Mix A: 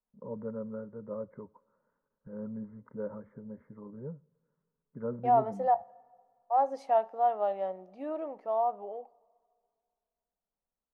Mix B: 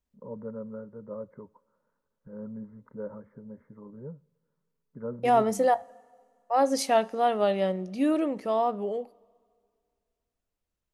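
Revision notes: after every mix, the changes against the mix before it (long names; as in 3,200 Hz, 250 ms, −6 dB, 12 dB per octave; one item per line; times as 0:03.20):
second voice: remove resonant band-pass 790 Hz, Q 2.9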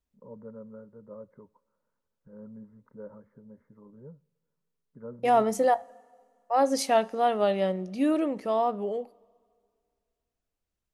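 first voice −6.0 dB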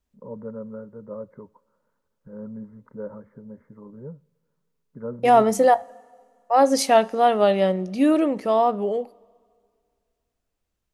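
first voice +9.0 dB
second voice +6.5 dB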